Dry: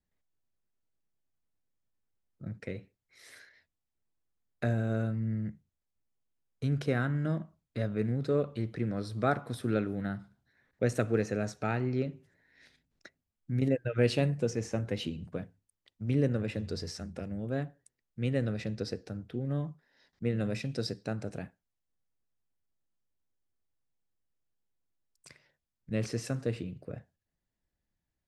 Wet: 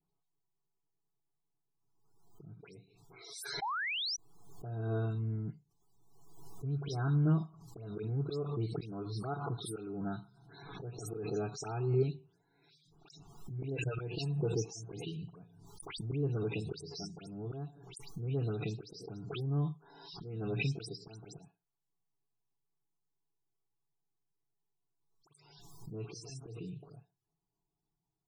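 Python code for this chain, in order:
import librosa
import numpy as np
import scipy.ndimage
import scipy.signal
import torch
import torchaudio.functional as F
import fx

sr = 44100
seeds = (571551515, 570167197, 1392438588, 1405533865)

y = fx.low_shelf(x, sr, hz=71.0, db=-9.5)
y = y + 0.38 * np.pad(y, (int(7.1 * sr / 1000.0), 0))[:len(y)]
y = fx.auto_swell(y, sr, attack_ms=320.0)
y = fx.high_shelf(y, sr, hz=3800.0, db=-2.5)
y = fx.fixed_phaser(y, sr, hz=370.0, stages=8)
y = fx.spec_paint(y, sr, seeds[0], shape='rise', start_s=3.61, length_s=0.46, low_hz=750.0, high_hz=6100.0, level_db=-38.0)
y = fx.dispersion(y, sr, late='highs', ms=117.0, hz=2900.0)
y = fx.spec_topn(y, sr, count=64)
y = fx.pre_swell(y, sr, db_per_s=43.0)
y = y * librosa.db_to_amplitude(3.0)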